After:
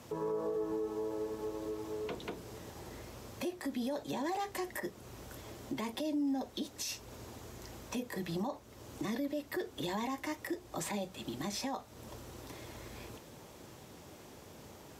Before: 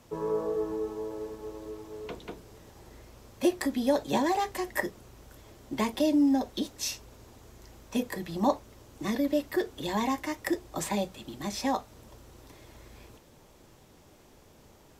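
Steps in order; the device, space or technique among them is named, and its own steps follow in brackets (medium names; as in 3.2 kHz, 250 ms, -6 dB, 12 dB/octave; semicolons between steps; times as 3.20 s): podcast mastering chain (high-pass 75 Hz; compression 2:1, threshold -43 dBFS, peak gain reduction 13 dB; peak limiter -33 dBFS, peak gain reduction 11.5 dB; trim +5 dB; MP3 128 kbps 44.1 kHz)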